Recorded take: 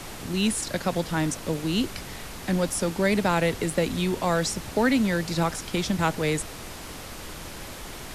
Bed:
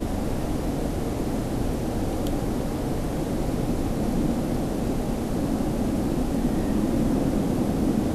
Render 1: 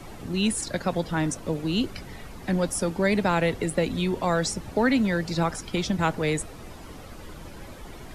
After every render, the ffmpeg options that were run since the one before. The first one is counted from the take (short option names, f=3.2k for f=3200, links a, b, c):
-af "afftdn=nr=11:nf=-39"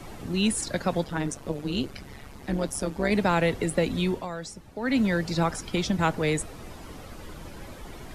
-filter_complex "[0:a]asplit=3[a][b][c];[a]afade=t=out:st=1.03:d=0.02[d];[b]tremolo=f=140:d=0.75,afade=t=in:st=1.03:d=0.02,afade=t=out:st=3.1:d=0.02[e];[c]afade=t=in:st=3.1:d=0.02[f];[d][e][f]amix=inputs=3:normalize=0,asplit=3[g][h][i];[g]atrim=end=4.28,asetpts=PTS-STARTPTS,afade=t=out:st=4.1:d=0.18:silence=0.266073[j];[h]atrim=start=4.28:end=4.81,asetpts=PTS-STARTPTS,volume=-11.5dB[k];[i]atrim=start=4.81,asetpts=PTS-STARTPTS,afade=t=in:d=0.18:silence=0.266073[l];[j][k][l]concat=n=3:v=0:a=1"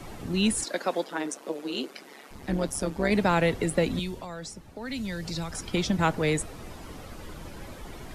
-filter_complex "[0:a]asettb=1/sr,asplit=3[a][b][c];[a]atrim=end=0.644[d];[b]atrim=start=0.64:end=2.31,asetpts=PTS-STARTPTS,afade=t=in:d=0.004:c=qsin,afade=t=out:st=1.666:d=0.004:c=qsin,highpass=f=280:w=0.5412,highpass=f=280:w=1.3066[e];[c]atrim=start=2.306[f];[d][e]acrossfade=d=0.004:c1=hsin:c2=qsin[g];[g][f]acrossfade=d=0.004:c1=qsin:c2=hsin,asettb=1/sr,asplit=3[h][i][j];[h]atrim=end=3.994[k];[i]atrim=start=3.99:end=5.69,asetpts=PTS-STARTPTS,afade=t=in:d=0.004:c=qsin,afade=t=out:st=1.696:d=0.004:c=qsin,acrossover=split=120|3000[l][m][n];[m]acompressor=threshold=-34dB:ratio=6:attack=3.2:release=140:knee=2.83:detection=peak[o];[l][o][n]amix=inputs=3:normalize=0[p];[j]atrim=start=5.686[q];[k][p]acrossfade=d=0.004:c1=hsin:c2=qsin[r];[r][q]acrossfade=d=0.004:c1=qsin:c2=hsin"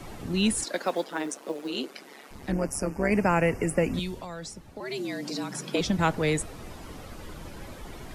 -filter_complex "[0:a]asettb=1/sr,asplit=3[a][b][c];[a]atrim=end=0.744[d];[b]atrim=start=0.74:end=1.7,asetpts=PTS-STARTPTS,afade=t=in:d=0.004:c=qsin,afade=t=out:st=0.956:d=0.004:c=qsin,acrusher=bits=8:mode=log:mix=0:aa=0.000001[e];[c]atrim=start=1.696[f];[d][e]acrossfade=d=0.004:c1=hsin:c2=qsin[g];[g][f]acrossfade=d=0.004:c1=qsin:c2=hsin,asettb=1/sr,asplit=3[h][i][j];[h]atrim=end=2.524[k];[i]atrim=start=2.52:end=3.94,asetpts=PTS-STARTPTS,afade=t=in:d=0.004:c=qsin,afade=t=out:st=1.416:d=0.004:c=qsin,asuperstop=centerf=3700:order=8:qfactor=1.9[l];[j]atrim=start=3.936[m];[k][l]acrossfade=d=0.004:c1=hsin:c2=qsin[n];[n][m]acrossfade=d=0.004:c1=qsin:c2=hsin,asettb=1/sr,asplit=3[o][p][q];[o]atrim=end=4.804[r];[p]atrim=start=4.8:end=5.81,asetpts=PTS-STARTPTS,afade=t=in:d=0.004:c=qsin,afade=t=out:st=1.006:d=0.004:c=qsin,afreqshift=130[s];[q]atrim=start=5.806[t];[r][s]acrossfade=d=0.004:c1=hsin:c2=qsin[u];[u][t]acrossfade=d=0.004:c1=qsin:c2=hsin"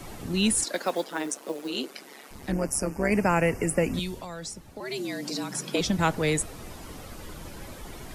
-af "highshelf=f=5.9k:g=7"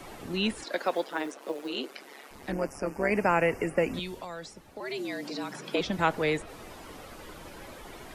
-filter_complex "[0:a]acrossover=split=4500[a][b];[b]acompressor=threshold=-47dB:ratio=4:attack=1:release=60[c];[a][c]amix=inputs=2:normalize=0,bass=f=250:g=-9,treble=f=4k:g=-5"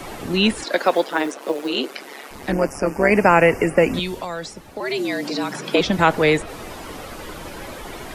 -af "volume=11dB,alimiter=limit=-2dB:level=0:latency=1"